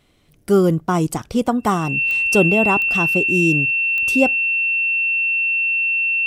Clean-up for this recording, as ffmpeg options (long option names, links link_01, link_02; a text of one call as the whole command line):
ffmpeg -i in.wav -af "adeclick=threshold=4,bandreject=frequency=2700:width=30" out.wav